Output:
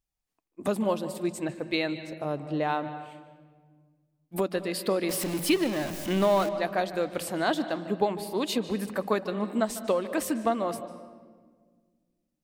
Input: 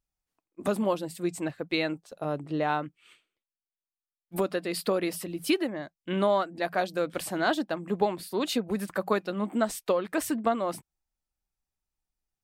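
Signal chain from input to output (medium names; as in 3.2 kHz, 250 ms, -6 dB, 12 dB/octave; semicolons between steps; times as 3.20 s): 5.09–6.49 s: jump at every zero crossing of -30 dBFS; peaking EQ 1.4 kHz -3.5 dB 0.33 oct; reverberation RT60 1.6 s, pre-delay 149 ms, DRR 11.5 dB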